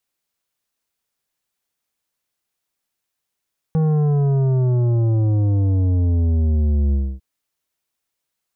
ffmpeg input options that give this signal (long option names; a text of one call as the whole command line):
ffmpeg -f lavfi -i "aevalsrc='0.168*clip((3.45-t)/0.27,0,1)*tanh(3.16*sin(2*PI*160*3.45/log(65/160)*(exp(log(65/160)*t/3.45)-1)))/tanh(3.16)':duration=3.45:sample_rate=44100" out.wav